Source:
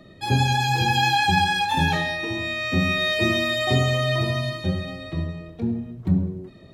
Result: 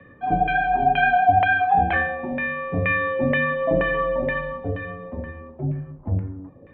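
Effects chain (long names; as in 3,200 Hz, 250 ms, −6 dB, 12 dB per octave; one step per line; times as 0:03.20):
auto-filter low-pass saw down 2.1 Hz 650–2,200 Hz
single-sideband voice off tune −88 Hz 180–3,200 Hz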